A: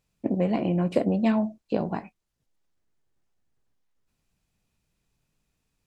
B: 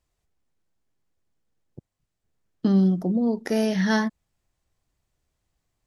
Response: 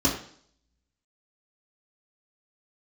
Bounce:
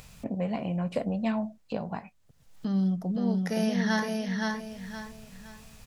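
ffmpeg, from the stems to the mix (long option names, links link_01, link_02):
-filter_complex "[0:a]acompressor=mode=upward:threshold=-24dB:ratio=2.5,volume=-3.5dB[link_01];[1:a]acompressor=mode=upward:threshold=-38dB:ratio=2.5,volume=-3.5dB,afade=type=in:start_time=2.36:duration=0.61:silence=0.281838,asplit=3[link_02][link_03][link_04];[link_03]volume=-3dB[link_05];[link_04]apad=whole_len=258713[link_06];[link_01][link_06]sidechaincompress=threshold=-47dB:ratio=8:attack=9.2:release=472[link_07];[link_05]aecho=0:1:518|1036|1554|2072|2590:1|0.33|0.109|0.0359|0.0119[link_08];[link_07][link_02][link_08]amix=inputs=3:normalize=0,equalizer=frequency=340:width_type=o:width=0.58:gain=-13"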